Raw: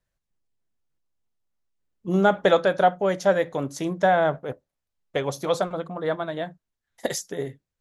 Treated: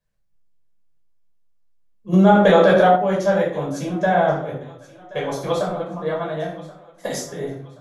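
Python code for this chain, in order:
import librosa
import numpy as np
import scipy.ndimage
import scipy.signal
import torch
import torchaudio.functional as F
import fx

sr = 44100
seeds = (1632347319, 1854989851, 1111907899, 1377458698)

p1 = x + fx.echo_thinned(x, sr, ms=1078, feedback_pct=47, hz=420.0, wet_db=-18.0, dry=0)
p2 = fx.room_shoebox(p1, sr, seeds[0], volume_m3=630.0, walls='furnished', distance_m=5.5)
p3 = fx.env_flatten(p2, sr, amount_pct=70, at=(2.12, 2.95), fade=0.02)
y = F.gain(torch.from_numpy(p3), -6.0).numpy()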